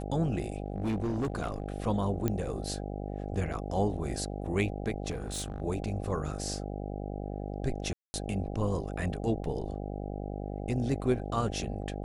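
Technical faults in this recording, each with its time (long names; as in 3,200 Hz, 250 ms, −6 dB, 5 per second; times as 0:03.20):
mains buzz 50 Hz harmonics 16 −37 dBFS
0:00.66–0:01.74: clipping −27 dBFS
0:02.28: click −16 dBFS
0:05.10–0:05.62: clipping −31 dBFS
0:07.93–0:08.14: drop-out 210 ms
0:09.44: drop-out 2.3 ms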